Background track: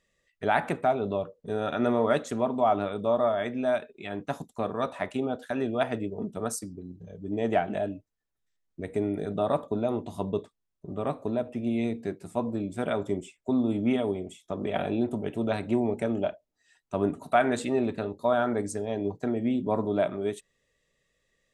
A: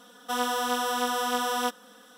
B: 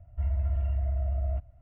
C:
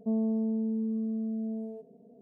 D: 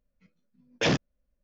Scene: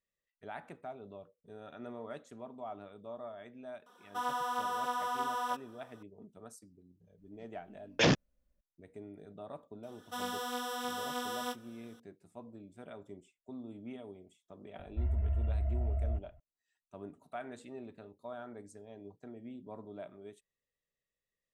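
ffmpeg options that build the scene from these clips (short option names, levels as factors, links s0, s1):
-filter_complex "[1:a]asplit=2[s0][s1];[0:a]volume=0.1[s2];[s0]equalizer=f=1000:w=1.2:g=12.5[s3];[s1]asplit=2[s4][s5];[s5]adelay=24,volume=0.282[s6];[s4][s6]amix=inputs=2:normalize=0[s7];[2:a]aresample=8000,aresample=44100[s8];[s3]atrim=end=2.17,asetpts=PTS-STARTPTS,volume=0.168,afade=t=in:d=0.004:c=hsin,afade=t=out:st=2.166:d=0.004:c=hsin,adelay=3860[s9];[4:a]atrim=end=1.43,asetpts=PTS-STARTPTS,volume=0.841,afade=t=in:d=0.004:c=hsin,afade=t=out:st=1.426:d=0.004:c=hsin,adelay=7180[s10];[s7]atrim=end=2.17,asetpts=PTS-STARTPTS,volume=0.299,afade=t=in:d=0.004:c=hsin,afade=t=out:st=2.166:d=0.004:c=hsin,adelay=9830[s11];[s8]atrim=end=1.61,asetpts=PTS-STARTPTS,volume=0.631,afade=t=in:d=0.004:c=hsin,afade=t=out:st=1.606:d=0.004:c=hsin,adelay=14790[s12];[s2][s9][s10][s11][s12]amix=inputs=5:normalize=0"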